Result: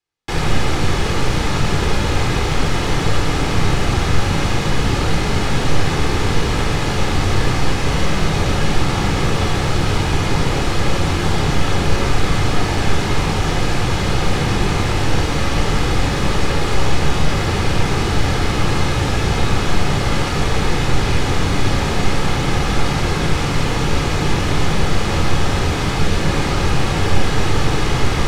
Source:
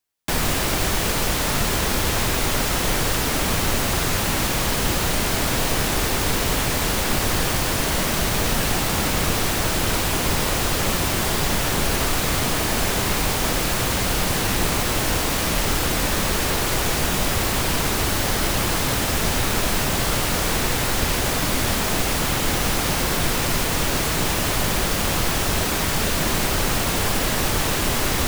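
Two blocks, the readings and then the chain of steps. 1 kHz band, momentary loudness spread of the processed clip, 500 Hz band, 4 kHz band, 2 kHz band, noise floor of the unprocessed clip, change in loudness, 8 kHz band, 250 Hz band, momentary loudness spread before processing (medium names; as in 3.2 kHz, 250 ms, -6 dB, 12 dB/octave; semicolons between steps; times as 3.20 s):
+3.0 dB, 1 LU, +3.5 dB, 0.0 dB, +1.5 dB, -23 dBFS, +2.0 dB, -6.0 dB, +5.0 dB, 0 LU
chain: distance through air 82 m; simulated room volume 2200 m³, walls furnished, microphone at 4 m; trim -1 dB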